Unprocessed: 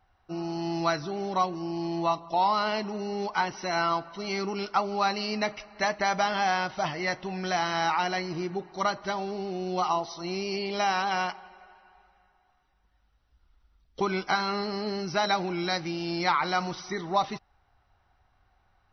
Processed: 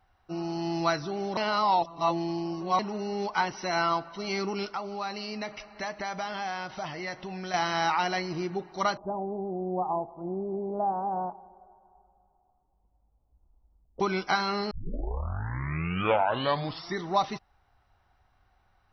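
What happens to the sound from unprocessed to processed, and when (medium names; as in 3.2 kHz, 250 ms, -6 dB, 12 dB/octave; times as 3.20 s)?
1.37–2.79 s: reverse
4.72–7.54 s: compression 2:1, threshold -36 dBFS
8.97–14.00 s: steep low-pass 910 Hz
14.71 s: tape start 2.30 s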